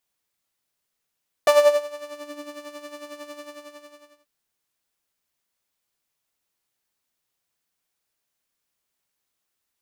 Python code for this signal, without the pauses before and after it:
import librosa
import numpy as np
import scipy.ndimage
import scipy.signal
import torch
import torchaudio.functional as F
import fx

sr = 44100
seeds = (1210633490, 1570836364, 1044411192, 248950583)

y = fx.sub_patch_tremolo(sr, seeds[0], note=74, wave='saw', wave2='saw', interval_st=7, detune_cents=16, level2_db=-15.5, sub_db=-17, noise_db=-30.0, kind='highpass', cutoff_hz=180.0, q=4.5, env_oct=2.0, env_decay_s=1.16, env_sustain_pct=15, attack_ms=1.5, decay_s=0.37, sustain_db=-20.5, release_s=0.9, note_s=1.89, lfo_hz=11.0, tremolo_db=10.0)